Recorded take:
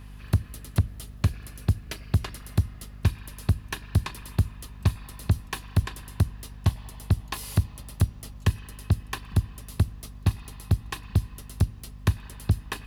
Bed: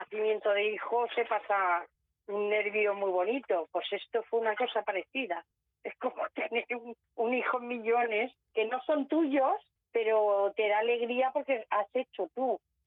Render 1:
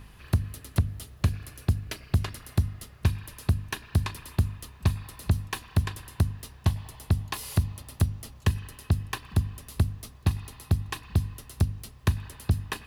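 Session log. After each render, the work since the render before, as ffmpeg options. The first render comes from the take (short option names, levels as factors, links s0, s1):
-af "bandreject=f=50:t=h:w=4,bandreject=f=100:t=h:w=4,bandreject=f=150:t=h:w=4,bandreject=f=200:t=h:w=4,bandreject=f=250:t=h:w=4"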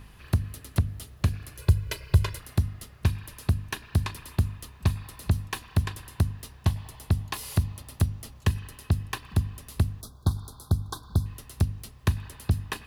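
-filter_complex "[0:a]asettb=1/sr,asplit=3[s0][s1][s2];[s0]atrim=end=1.584[s3];[s1]atrim=start=1.58:end=2.4,asetpts=PTS-STARTPTS,afade=t=in:d=0.004:c=qsin,afade=t=out:st=0.816:d=0.004:c=qsin,aecho=1:1:2:1,atrim=end_sample=36162[s4];[s2]atrim=start=2.396[s5];[s3][s4]acrossfade=d=0.004:c1=hsin:c2=qsin[s6];[s6][s5]acrossfade=d=0.004:c1=qsin:c2=hsin,asettb=1/sr,asplit=3[s7][s8][s9];[s7]atrim=end=10.014[s10];[s8]atrim=start=10.01:end=11.26,asetpts=PTS-STARTPTS,afade=t=in:d=0.004:c=qsin,afade=t=out:st=1.246:d=0.004:c=qsin,asuperstop=centerf=2300:order=20:qfactor=1.3[s11];[s9]atrim=start=11.256[s12];[s10][s11]acrossfade=d=0.004:c1=hsin:c2=qsin[s13];[s13][s12]acrossfade=d=0.004:c1=qsin:c2=hsin"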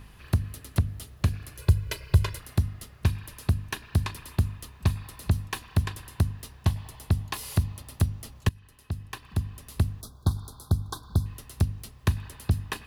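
-filter_complex "[0:a]asplit=2[s0][s1];[s0]atrim=end=8.49,asetpts=PTS-STARTPTS,afade=t=out:st=8.486:d=0.004:c=hsin:silence=0.112202[s2];[s1]atrim=start=8.49,asetpts=PTS-STARTPTS,afade=t=in:d=1.38:silence=0.112202[s3];[s2][s3]concat=n=2:v=0:a=1"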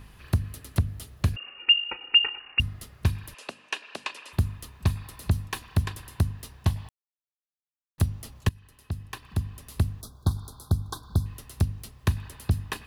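-filter_complex "[0:a]asettb=1/sr,asplit=3[s0][s1][s2];[s0]atrim=end=1.364[s3];[s1]atrim=start=1.36:end=2.6,asetpts=PTS-STARTPTS,afade=t=in:d=0.004:c=qsin,afade=t=out:st=1.236:d=0.004:c=qsin,lowpass=f=2500:t=q:w=0.5098,lowpass=f=2500:t=q:w=0.6013,lowpass=f=2500:t=q:w=0.9,lowpass=f=2500:t=q:w=2.563,afreqshift=-2900[s4];[s2]atrim=start=2.596[s5];[s3][s4]acrossfade=d=0.004:c1=hsin:c2=qsin[s6];[s6][s5]acrossfade=d=0.004:c1=qsin:c2=hsin,asettb=1/sr,asplit=3[s7][s8][s9];[s7]atrim=end=3.344[s10];[s8]atrim=start=3.34:end=4.33,asetpts=PTS-STARTPTS,afade=t=in:d=0.004:c=qsin,afade=t=out:st=0.986:d=0.004:c=qsin,highpass=f=330:w=0.5412,highpass=f=330:w=1.3066,equalizer=f=350:t=q:w=4:g=-6,equalizer=f=560:t=q:w=4:g=5,equalizer=f=2700:t=q:w=4:g=9,lowpass=f=8700:w=0.5412,lowpass=f=8700:w=1.3066[s11];[s9]atrim=start=4.326[s12];[s10][s11]acrossfade=d=0.004:c1=hsin:c2=qsin[s13];[s13][s12]acrossfade=d=0.004:c1=qsin:c2=hsin,asplit=3[s14][s15][s16];[s14]atrim=end=6.89,asetpts=PTS-STARTPTS,afade=t=out:st=6.886:d=0.004:c=hsin[s17];[s15]atrim=start=6.89:end=7.98,asetpts=PTS-STARTPTS,volume=0[s18];[s16]atrim=start=7.98,asetpts=PTS-STARTPTS,afade=t=in:d=0.004:c=hsin[s19];[s17][s18][s19]concat=n=3:v=0:a=1"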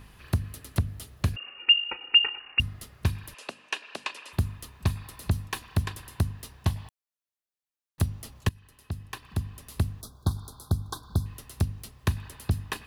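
-af "lowshelf=f=150:g=-3"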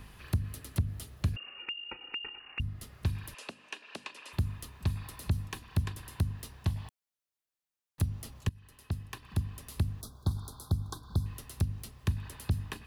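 -filter_complex "[0:a]alimiter=limit=0.133:level=0:latency=1:release=111,acrossover=split=320[s0][s1];[s1]acompressor=threshold=0.00708:ratio=2.5[s2];[s0][s2]amix=inputs=2:normalize=0"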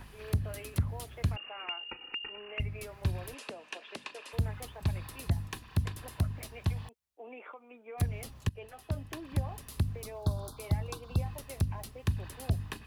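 -filter_complex "[1:a]volume=0.133[s0];[0:a][s0]amix=inputs=2:normalize=0"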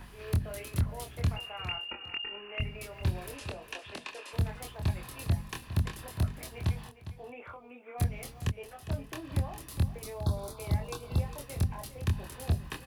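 -filter_complex "[0:a]asplit=2[s0][s1];[s1]adelay=25,volume=0.631[s2];[s0][s2]amix=inputs=2:normalize=0,aecho=1:1:406|812:0.224|0.0448"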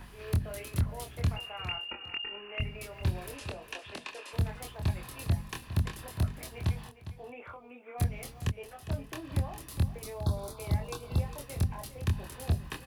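-af anull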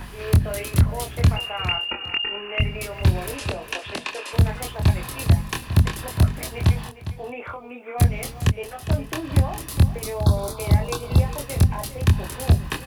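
-af "volume=3.98"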